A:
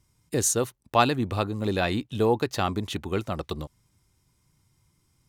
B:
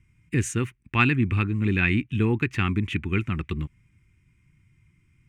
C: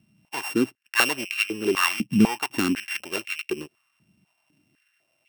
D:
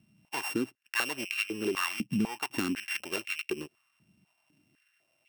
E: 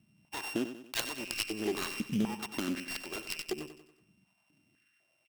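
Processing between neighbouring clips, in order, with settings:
EQ curve 160 Hz 0 dB, 360 Hz -6 dB, 600 Hz -29 dB, 920 Hz -15 dB, 2400 Hz +6 dB, 4100 Hz -21 dB, 8400 Hz -15 dB, 12000 Hz -24 dB; gain +7 dB
sample sorter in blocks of 16 samples; stepped high-pass 4 Hz 200–2300 Hz
compressor 3:1, threshold -26 dBFS, peak gain reduction 10.5 dB; gain -2.5 dB
self-modulated delay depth 0.48 ms; feedback echo 94 ms, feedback 46%, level -11 dB; gain -2 dB

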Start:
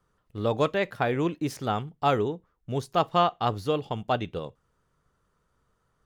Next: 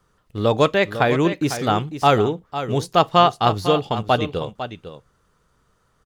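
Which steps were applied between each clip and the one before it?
bell 5300 Hz +3.5 dB 2.3 oct; on a send: echo 0.502 s -11 dB; on the sum: gain +7.5 dB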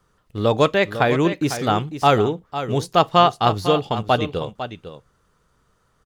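nothing audible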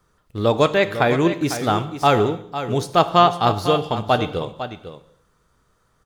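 high shelf 11000 Hz +3 dB; notch 2900 Hz, Q 21; reverb, pre-delay 3 ms, DRR 11.5 dB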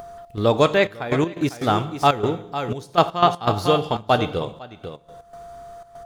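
whine 690 Hz -50 dBFS; step gate "xx.xxxx..x.x.xx" 121 bpm -12 dB; upward compressor, threshold -28 dBFS

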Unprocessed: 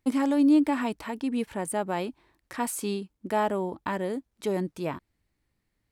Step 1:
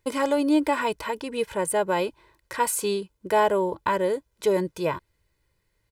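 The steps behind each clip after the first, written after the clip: low shelf 200 Hz -3.5 dB; comb 2 ms, depth 75%; gain +4.5 dB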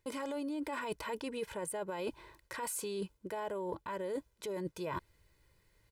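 limiter -22 dBFS, peak gain reduction 11 dB; reverse; compressor 12:1, threshold -38 dBFS, peak gain reduction 13 dB; reverse; gain +2.5 dB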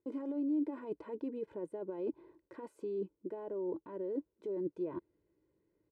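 band-pass 320 Hz, Q 3.3; gain +7 dB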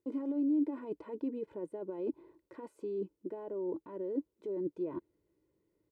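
notch 1600 Hz, Q 15; dynamic EQ 270 Hz, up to +4 dB, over -49 dBFS, Q 2.8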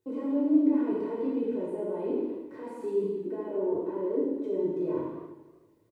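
speakerphone echo 0.16 s, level -18 dB; non-linear reverb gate 0.38 s falling, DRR -8 dB; warbling echo 80 ms, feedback 69%, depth 145 cents, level -13 dB

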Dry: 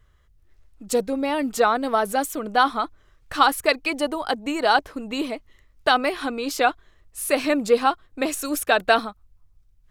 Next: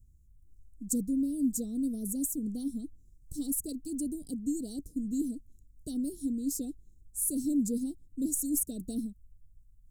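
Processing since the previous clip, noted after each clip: elliptic band-stop 260–7400 Hz, stop band 60 dB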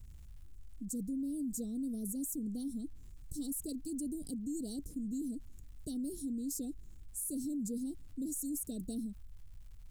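limiter -26.5 dBFS, peak gain reduction 10.5 dB; crackle 260/s -64 dBFS; fast leveller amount 50%; gain -6 dB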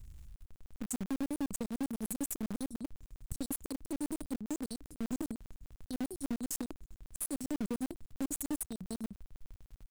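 half-wave gain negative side -3 dB; in parallel at -9.5 dB: requantised 6-bit, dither none; on the sum: crackling interface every 0.10 s, samples 2048, zero, from 0.36; gain +2 dB

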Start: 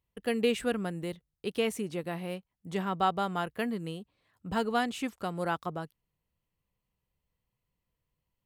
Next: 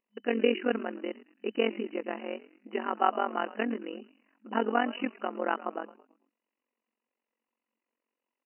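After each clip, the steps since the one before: frequency-shifting echo 0.109 s, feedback 45%, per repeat -110 Hz, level -17.5 dB; AM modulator 45 Hz, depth 85%; FFT band-pass 210–3000 Hz; gain +5.5 dB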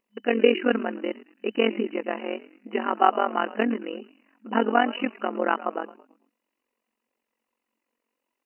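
phaser 0.56 Hz, delay 4.5 ms, feedback 21%; gain +6 dB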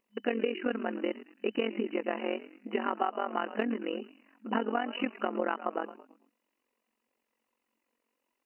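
compressor 12:1, threshold -26 dBFS, peak gain reduction 15 dB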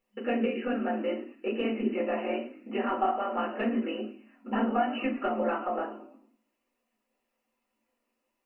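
reverb RT60 0.35 s, pre-delay 4 ms, DRR -6.5 dB; gain -8 dB

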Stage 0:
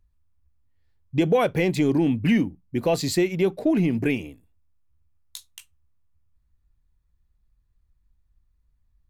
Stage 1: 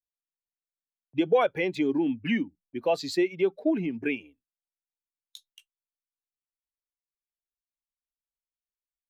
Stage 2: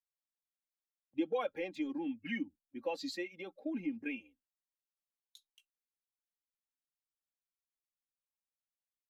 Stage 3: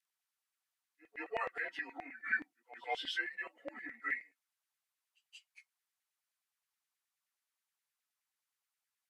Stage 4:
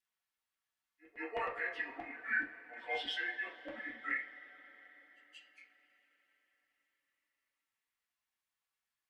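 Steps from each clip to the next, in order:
per-bin expansion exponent 1.5; gate -56 dBFS, range -17 dB; three-band isolator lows -20 dB, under 240 Hz, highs -14 dB, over 5000 Hz
harmonic-percussive split harmonic -15 dB; comb 3.7 ms, depth 68%; harmonic-percussive split percussive -12 dB; gain -2 dB
inharmonic rescaling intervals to 90%; pre-echo 0.178 s -21 dB; LFO high-pass saw down 9.5 Hz 720–2100 Hz; gain +5.5 dB
reverb, pre-delay 3 ms, DRR -4.5 dB; gain -5 dB

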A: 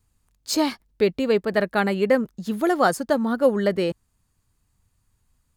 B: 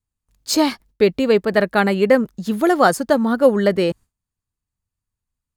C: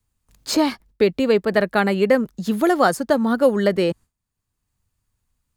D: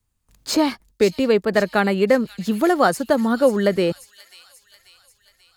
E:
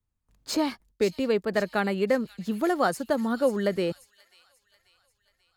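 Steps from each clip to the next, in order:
gate with hold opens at -52 dBFS; gain +5 dB
three-band squash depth 40%; gain -2 dB
thin delay 0.538 s, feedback 56%, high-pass 4000 Hz, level -8 dB
mismatched tape noise reduction decoder only; gain -7.5 dB

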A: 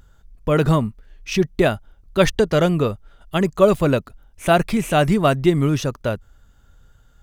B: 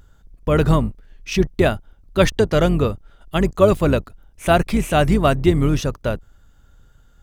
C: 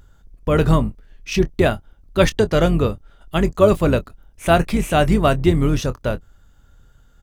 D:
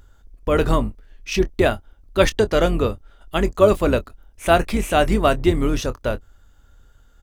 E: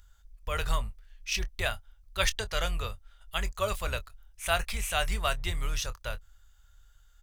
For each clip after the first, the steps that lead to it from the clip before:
octaver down 2 oct, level -3 dB
doubler 24 ms -13.5 dB
bell 150 Hz -10.5 dB 0.66 oct
passive tone stack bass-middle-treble 10-0-10; gain -1.5 dB

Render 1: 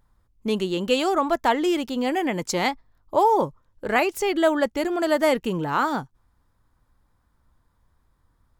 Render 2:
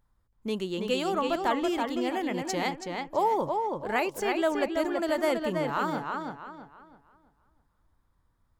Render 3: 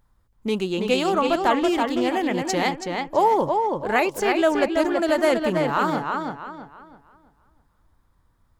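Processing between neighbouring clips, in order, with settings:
darkening echo 0.328 s, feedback 34%, low-pass 4600 Hz, level -4 dB; gain -7 dB
Doppler distortion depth 0.11 ms; gain +7 dB

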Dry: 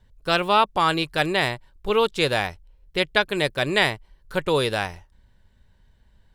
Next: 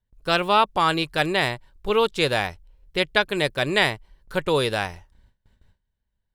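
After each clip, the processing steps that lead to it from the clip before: gate with hold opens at -46 dBFS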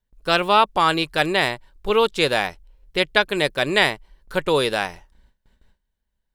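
bell 97 Hz -11.5 dB 0.81 oct; gain +2.5 dB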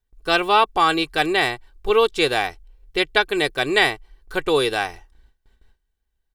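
comb 2.6 ms, depth 54%; gain -1 dB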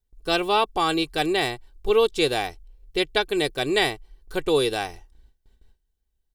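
bell 1500 Hz -8.5 dB 1.9 oct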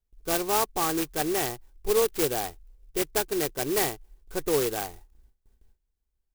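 clock jitter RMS 0.1 ms; gain -4 dB

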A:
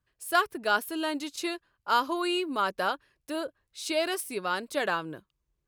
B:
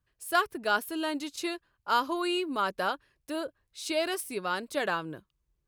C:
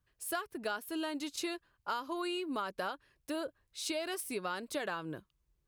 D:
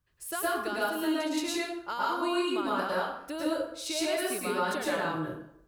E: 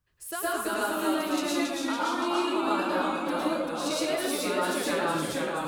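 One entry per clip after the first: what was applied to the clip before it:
low shelf 160 Hz +4.5 dB; gain -1.5 dB
compressor 12:1, threshold -33 dBFS, peak gain reduction 14 dB
plate-style reverb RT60 0.72 s, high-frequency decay 0.65×, pre-delay 95 ms, DRR -6.5 dB
echoes that change speed 0.195 s, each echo -1 st, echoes 3

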